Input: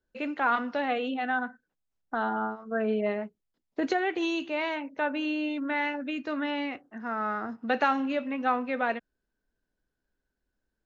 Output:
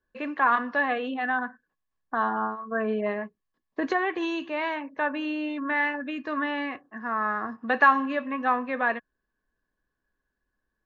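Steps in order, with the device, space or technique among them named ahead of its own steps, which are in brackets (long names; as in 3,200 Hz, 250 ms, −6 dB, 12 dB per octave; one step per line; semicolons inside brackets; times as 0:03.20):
inside a helmet (high-shelf EQ 5,800 Hz −9.5 dB; hollow resonant body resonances 1,100/1,700 Hz, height 17 dB, ringing for 45 ms)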